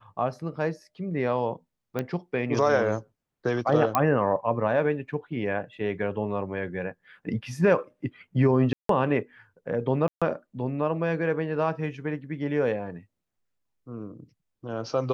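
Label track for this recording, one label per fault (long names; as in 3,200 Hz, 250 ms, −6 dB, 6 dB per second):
1.990000	1.990000	click −16 dBFS
3.950000	3.950000	click −8 dBFS
8.730000	8.890000	drop-out 163 ms
10.080000	10.220000	drop-out 136 ms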